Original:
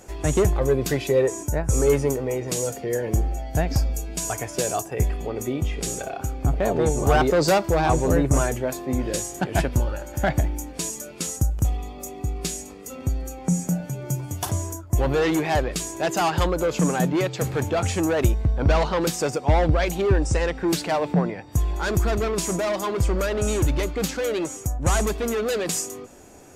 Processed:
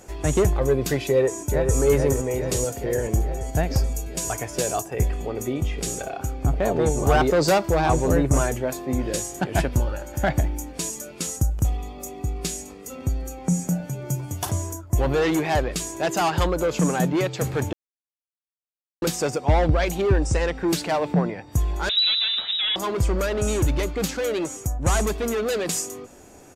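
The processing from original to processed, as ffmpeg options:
-filter_complex "[0:a]asplit=2[s0][s1];[s1]afade=t=in:st=1.06:d=0.01,afade=t=out:st=1.78:d=0.01,aecho=0:1:430|860|1290|1720|2150|2580|3010|3440|3870|4300|4730|5160:0.530884|0.371619|0.260133|0.182093|0.127465|0.0892257|0.062458|0.0437206|0.0306044|0.0214231|0.0149962|0.0104973[s2];[s0][s2]amix=inputs=2:normalize=0,asettb=1/sr,asplit=3[s3][s4][s5];[s3]atrim=end=21.894[s6];[s4]atrim=start=21.89:end=22.76,asetpts=PTS-STARTPTS,afade=t=in:d=0.004:c=qsin,afade=t=out:st=0.866:d=0.004:c=qsin,lowpass=f=3400:t=q:w=0.5098,lowpass=f=3400:t=q:w=0.6013,lowpass=f=3400:t=q:w=0.9,lowpass=f=3400:t=q:w=2.563,afreqshift=-4000[s7];[s5]atrim=start=22.756[s8];[s6][s7]acrossfade=d=0.004:c1=hsin:c2=qsin[s9];[s9][s8]acrossfade=d=0.004:c1=qsin:c2=hsin,asplit=3[s10][s11][s12];[s10]atrim=end=17.73,asetpts=PTS-STARTPTS,afade=t=out:st=17.726:d=0.004:c=hsin[s13];[s11]atrim=start=17.73:end=19.02,asetpts=PTS-STARTPTS,volume=0[s14];[s12]atrim=start=19.02,asetpts=PTS-STARTPTS,afade=t=in:d=0.004:c=hsin[s15];[s13][s14][s15]concat=n=3:v=0:a=1"

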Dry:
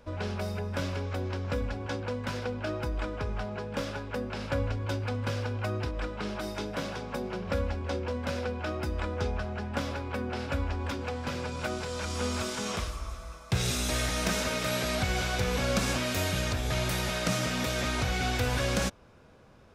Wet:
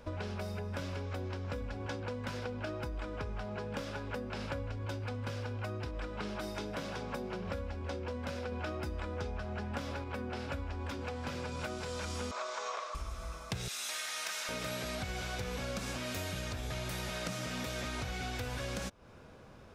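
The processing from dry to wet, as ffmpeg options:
-filter_complex "[0:a]asettb=1/sr,asplit=3[s0][s1][s2];[s0]atrim=end=12.314[s3];[s1]atrim=start=12.31:end=12.95,asetpts=PTS-STARTPTS,afade=t=in:d=0.004:c=qsin,afade=t=out:st=0.636:d=0.004:c=qsin,highpass=f=500:w=0.5412,highpass=f=500:w=1.3066,equalizer=f=600:t=q:w=4:g=6,equalizer=f=1100:t=q:w=4:g=9,equalizer=f=3000:t=q:w=4:g=-6,equalizer=f=5000:t=q:w=4:g=-5,lowpass=f=6400:w=0.5412,lowpass=f=6400:w=1.3066[s4];[s2]atrim=start=12.946[s5];[s3][s4]acrossfade=d=0.004:c1=hsin:c2=qsin[s6];[s6][s5]acrossfade=d=0.004:c1=qsin:c2=hsin,asettb=1/sr,asplit=3[s7][s8][s9];[s7]atrim=end=13.684[s10];[s8]atrim=start=13.68:end=14.49,asetpts=PTS-STARTPTS,afade=t=in:d=0.004:c=qsin,afade=t=out:st=0.806:d=0.004:c=qsin,highpass=1100[s11];[s9]atrim=start=14.486[s12];[s10][s11]acrossfade=d=0.004:c1=hsin:c2=qsin[s13];[s13][s12]acrossfade=d=0.004:c1=qsin:c2=hsin,asplit=3[s14][s15][s16];[s14]atrim=end=8.522[s17];[s15]atrim=start=8.518:end=10.042,asetpts=PTS-STARTPTS,volume=1.58[s18];[s16]atrim=start=10.038[s19];[s17][s18]acrossfade=d=0.004:c1=hsin:c2=hsin[s20];[s20][s19]acrossfade=d=0.004:c1=hsin:c2=hsin,acompressor=threshold=0.0126:ratio=6,volume=1.26"

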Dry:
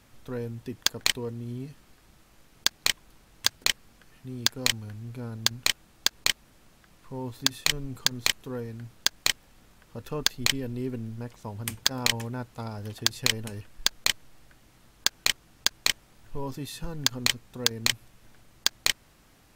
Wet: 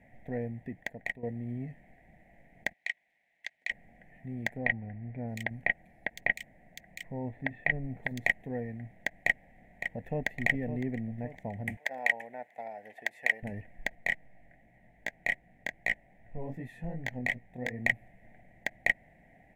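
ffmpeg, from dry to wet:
-filter_complex "[0:a]asplit=3[s0][s1][s2];[s0]afade=t=out:st=2.72:d=0.02[s3];[s1]bandpass=f=4100:t=q:w=1.4,afade=t=in:st=2.72:d=0.02,afade=t=out:st=3.7:d=0.02[s4];[s2]afade=t=in:st=3.7:d=0.02[s5];[s3][s4][s5]amix=inputs=3:normalize=0,asettb=1/sr,asplit=3[s6][s7][s8];[s6]atrim=end=4.574[s9];[s7]atrim=start=4.57:end=8.2,asetpts=PTS-STARTPTS,afade=t=in:d=0.004:c=qsin,afade=t=out:st=3.626:d=0.004:c=qsin,acrossover=split=3200[s10][s11];[s11]adelay=710[s12];[s10][s12]amix=inputs=2:normalize=0,atrim=end_sample=160083[s13];[s8]atrim=start=8.196[s14];[s9][s13]acrossfade=d=0.004:c1=hsin:c2=qsin[s15];[s15][s14]acrossfade=d=0.004:c1=qsin:c2=hsin,asplit=2[s16][s17];[s17]afade=t=in:st=9.17:d=0.01,afade=t=out:st=10.26:d=0.01,aecho=0:1:560|1120|1680|2240|2800:0.375837|0.169127|0.0761071|0.0342482|0.0154117[s18];[s16][s18]amix=inputs=2:normalize=0,asettb=1/sr,asplit=3[s19][s20][s21];[s19]atrim=end=11.774[s22];[s20]atrim=start=11.77:end=13.43,asetpts=PTS-STARTPTS,afade=t=in:d=0.004:c=qsin,afade=t=out:st=1.656:d=0.004:c=qsin,highpass=640[s23];[s21]atrim=start=13.426[s24];[s22][s23]acrossfade=d=0.004:c1=hsin:c2=qsin[s25];[s25][s24]acrossfade=d=0.004:c1=qsin:c2=hsin,asettb=1/sr,asplit=3[s26][s27][s28];[s26]atrim=end=13.954[s29];[s27]atrim=start=13.95:end=17.79,asetpts=PTS-STARTPTS,afade=t=in:d=0.004:c=qsin,afade=t=out:st=3.836:d=0.004:c=qsin,flanger=delay=16.5:depth=7.9:speed=2.6[s30];[s28]atrim=start=17.786[s31];[s29][s30]acrossfade=d=0.004:c1=hsin:c2=qsin[s32];[s32][s31]acrossfade=d=0.004:c1=qsin:c2=hsin,asplit=2[s33][s34];[s33]atrim=end=1.23,asetpts=PTS-STARTPTS,afade=t=out:st=0.45:d=0.78:silence=0.237137[s35];[s34]atrim=start=1.23,asetpts=PTS-STARTPTS,afade=t=in:d=0.004:c=hsin:silence=0.237137[s36];[s35][s36]concat=n=2:v=0:a=1,firequalizer=gain_entry='entry(110,0);entry(170,7);entry(380,-3);entry(710,13);entry(1200,-29);entry(1900,13);entry(2800,-11);entry(4600,-27);entry(7300,-19)':delay=0.05:min_phase=1,volume=0.668"

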